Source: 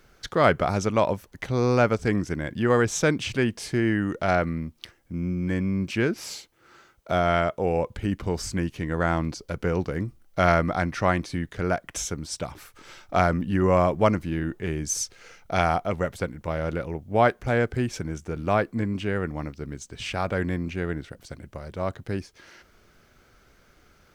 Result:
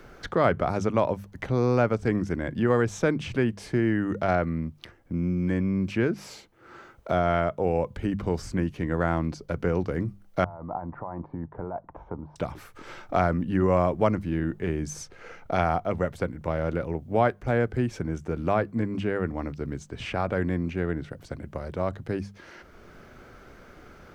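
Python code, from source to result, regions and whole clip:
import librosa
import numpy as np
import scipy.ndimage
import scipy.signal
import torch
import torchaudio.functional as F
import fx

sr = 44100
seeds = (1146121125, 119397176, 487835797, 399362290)

y = fx.chain(x, sr, fx.over_compress(threshold_db=-28.0, ratio=-1.0),
    fx.ladder_lowpass(hz=1000.0, resonance_pct=70), at=(10.44, 12.36))
y = fx.high_shelf(y, sr, hz=2300.0, db=-10.0)
y = fx.hum_notches(y, sr, base_hz=50, count=4)
y = fx.band_squash(y, sr, depth_pct=40)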